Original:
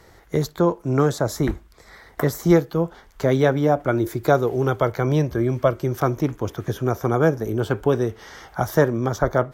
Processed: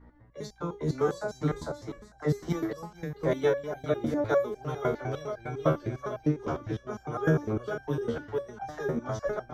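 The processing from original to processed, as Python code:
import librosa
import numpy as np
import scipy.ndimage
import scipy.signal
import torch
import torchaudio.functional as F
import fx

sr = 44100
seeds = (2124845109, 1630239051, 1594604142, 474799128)

p1 = fx.env_lowpass(x, sr, base_hz=1200.0, full_db=-14.0)
p2 = fx.dispersion(p1, sr, late='lows', ms=43.0, hz=360.0)
p3 = fx.add_hum(p2, sr, base_hz=60, snr_db=23)
p4 = p3 + fx.echo_feedback(p3, sr, ms=450, feedback_pct=26, wet_db=-5, dry=0)
p5 = fx.resonator_held(p4, sr, hz=9.9, low_hz=78.0, high_hz=790.0)
y = p5 * 10.0 ** (2.0 / 20.0)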